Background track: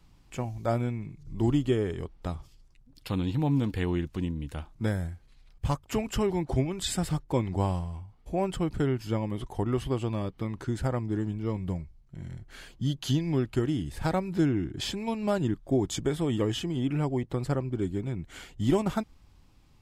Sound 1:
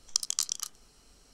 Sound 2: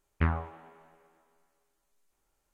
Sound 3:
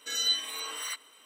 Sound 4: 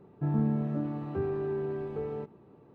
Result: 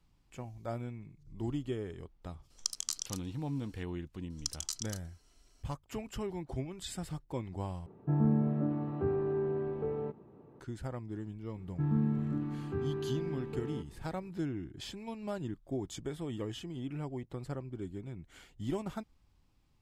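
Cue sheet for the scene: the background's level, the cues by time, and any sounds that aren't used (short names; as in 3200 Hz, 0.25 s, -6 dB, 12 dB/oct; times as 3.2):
background track -11 dB
2.5 add 1 -6.5 dB
4.3 add 1 -10.5 dB + comb 3 ms, depth 72%
7.86 replace with 4 + LPF 1700 Hz 6 dB/oct
11.57 add 4 -1.5 dB + bell 610 Hz -14.5 dB 0.67 oct
not used: 2, 3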